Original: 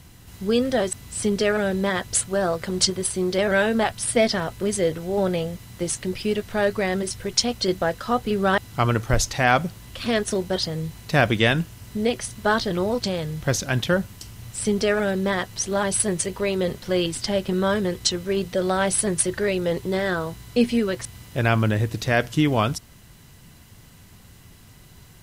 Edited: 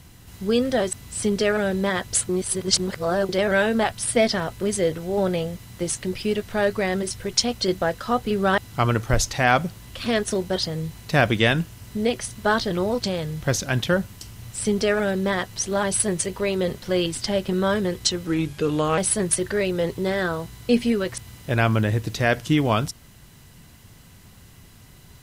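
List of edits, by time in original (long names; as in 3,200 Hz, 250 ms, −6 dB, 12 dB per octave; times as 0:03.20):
0:02.29–0:03.29: reverse
0:18.27–0:18.85: play speed 82%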